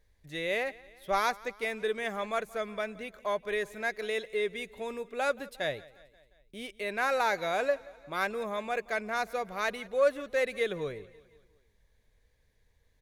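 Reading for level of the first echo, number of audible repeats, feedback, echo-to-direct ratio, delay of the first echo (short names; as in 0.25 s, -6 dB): -21.5 dB, 3, 58%, -20.0 dB, 0.177 s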